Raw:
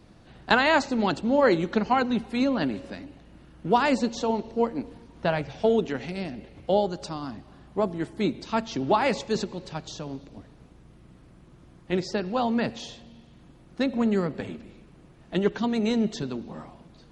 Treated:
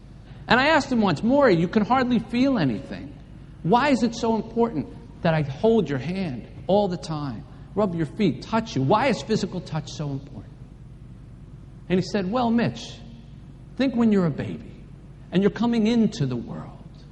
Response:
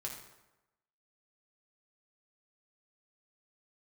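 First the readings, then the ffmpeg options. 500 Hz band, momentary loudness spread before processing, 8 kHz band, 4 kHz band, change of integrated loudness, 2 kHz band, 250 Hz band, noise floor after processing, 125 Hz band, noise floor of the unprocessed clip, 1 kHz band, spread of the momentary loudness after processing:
+2.5 dB, 16 LU, +2.0 dB, +2.0 dB, +3.5 dB, +2.0 dB, +4.5 dB, −44 dBFS, +8.5 dB, −53 dBFS, +2.0 dB, 17 LU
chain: -af "equalizer=frequency=130:width_type=o:width=0.89:gain=10.5,aeval=exprs='val(0)+0.00398*(sin(2*PI*50*n/s)+sin(2*PI*2*50*n/s)/2+sin(2*PI*3*50*n/s)/3+sin(2*PI*4*50*n/s)/4+sin(2*PI*5*50*n/s)/5)':channel_layout=same,volume=2dB"

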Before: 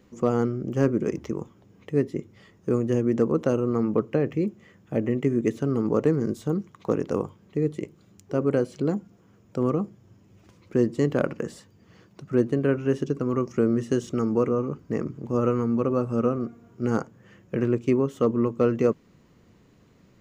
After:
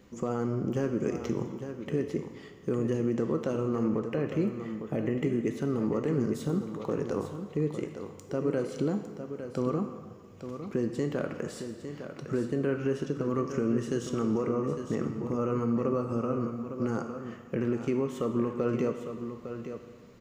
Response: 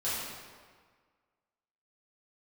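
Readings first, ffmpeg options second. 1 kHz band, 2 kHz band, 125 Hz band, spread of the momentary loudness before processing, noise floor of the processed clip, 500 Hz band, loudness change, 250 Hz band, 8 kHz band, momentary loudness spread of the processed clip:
−4.0 dB, −4.0 dB, −5.0 dB, 9 LU, −49 dBFS, −5.5 dB, −5.5 dB, −4.5 dB, can't be measured, 10 LU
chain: -filter_complex "[0:a]alimiter=limit=-20.5dB:level=0:latency=1:release=143,aecho=1:1:856:0.335,asplit=2[link_01][link_02];[1:a]atrim=start_sample=2205,lowshelf=frequency=400:gain=-10[link_03];[link_02][link_03]afir=irnorm=-1:irlink=0,volume=-10dB[link_04];[link_01][link_04]amix=inputs=2:normalize=0"

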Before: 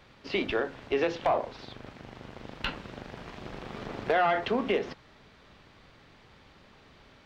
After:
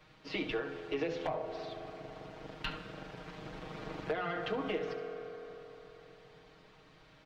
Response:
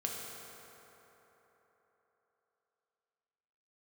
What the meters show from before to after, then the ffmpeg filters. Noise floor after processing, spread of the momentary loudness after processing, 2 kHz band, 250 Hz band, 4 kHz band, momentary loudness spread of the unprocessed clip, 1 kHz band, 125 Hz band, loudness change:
−61 dBFS, 19 LU, −7.5 dB, −6.0 dB, −6.0 dB, 19 LU, −10.5 dB, −3.5 dB, −9.0 dB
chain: -filter_complex "[0:a]aecho=1:1:6.4:0.99,asplit=2[link_01][link_02];[1:a]atrim=start_sample=2205,adelay=69[link_03];[link_02][link_03]afir=irnorm=-1:irlink=0,volume=-11.5dB[link_04];[link_01][link_04]amix=inputs=2:normalize=0,acrossover=split=300[link_05][link_06];[link_06]acompressor=threshold=-26dB:ratio=6[link_07];[link_05][link_07]amix=inputs=2:normalize=0,volume=-7.5dB"

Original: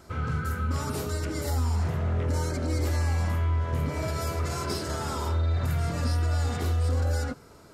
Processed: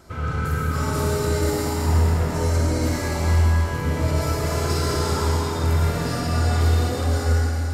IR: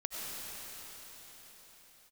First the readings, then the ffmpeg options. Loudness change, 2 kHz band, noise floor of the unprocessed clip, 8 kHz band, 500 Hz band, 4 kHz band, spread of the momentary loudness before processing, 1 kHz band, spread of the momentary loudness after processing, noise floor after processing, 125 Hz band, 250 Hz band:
+6.5 dB, +7.5 dB, −51 dBFS, +7.5 dB, +8.5 dB, +7.5 dB, 4 LU, +7.0 dB, 4 LU, −26 dBFS, +6.0 dB, +7.5 dB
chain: -filter_complex "[1:a]atrim=start_sample=2205,asetrate=66150,aresample=44100[link_01];[0:a][link_01]afir=irnorm=-1:irlink=0,volume=8dB"

